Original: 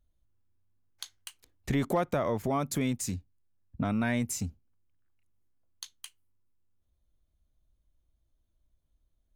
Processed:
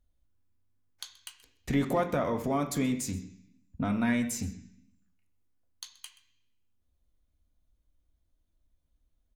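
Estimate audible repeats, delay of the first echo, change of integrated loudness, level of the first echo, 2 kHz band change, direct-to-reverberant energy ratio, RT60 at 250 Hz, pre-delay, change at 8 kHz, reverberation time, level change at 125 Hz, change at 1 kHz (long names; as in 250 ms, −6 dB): 1, 128 ms, +0.5 dB, −19.5 dB, +0.5 dB, 4.0 dB, 0.95 s, 3 ms, −0.5 dB, 0.65 s, −1.5 dB, 0.0 dB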